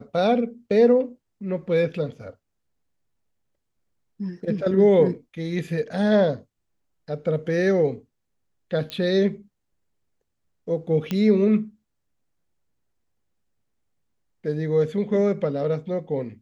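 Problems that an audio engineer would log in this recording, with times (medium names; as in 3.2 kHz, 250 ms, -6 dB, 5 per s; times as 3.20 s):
8.90 s: pop -17 dBFS
11.11 s: pop -13 dBFS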